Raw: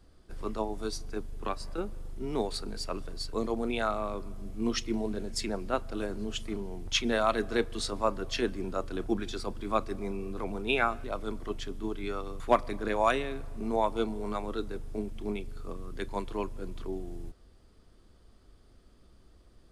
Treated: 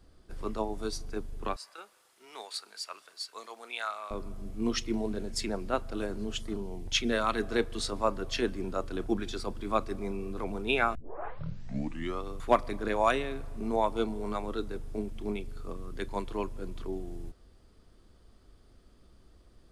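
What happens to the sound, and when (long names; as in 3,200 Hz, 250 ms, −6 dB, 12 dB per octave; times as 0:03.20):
0:01.56–0:04.11: high-pass filter 1,200 Hz
0:06.39–0:07.39: parametric band 2,800 Hz → 540 Hz −14.5 dB 0.23 octaves
0:10.95: tape start 1.28 s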